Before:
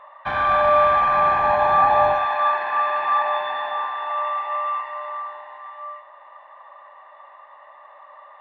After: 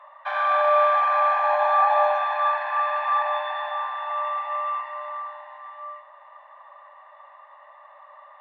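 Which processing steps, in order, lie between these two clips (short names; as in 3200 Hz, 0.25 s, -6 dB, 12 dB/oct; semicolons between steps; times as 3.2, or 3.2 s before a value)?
elliptic high-pass 560 Hz, stop band 40 dB; gain -2.5 dB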